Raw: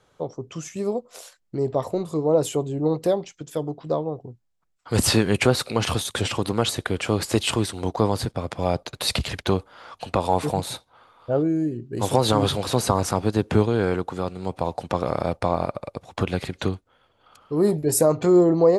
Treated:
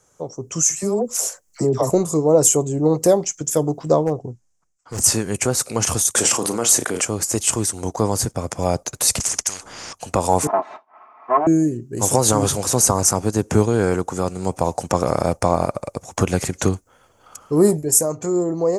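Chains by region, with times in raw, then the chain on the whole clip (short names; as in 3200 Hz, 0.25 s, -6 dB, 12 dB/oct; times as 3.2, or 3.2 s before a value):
0.63–1.9 dispersion lows, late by 75 ms, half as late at 900 Hz + compressor 2.5:1, threshold -25 dBFS
4.01–5.04 LPF 7000 Hz + overloaded stage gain 20 dB
6.15–7.05 HPF 220 Hz + doubler 34 ms -10 dB + fast leveller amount 70%
9.2–9.93 LPF 6600 Hz + spectral compressor 10:1
10.47–11.47 minimum comb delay 4.6 ms + speaker cabinet 460–2100 Hz, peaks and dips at 460 Hz -8 dB, 750 Hz +9 dB, 1100 Hz +7 dB, 1600 Hz -5 dB + comb 3 ms, depth 35%
whole clip: resonant high shelf 5000 Hz +9.5 dB, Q 3; AGC; gain -1 dB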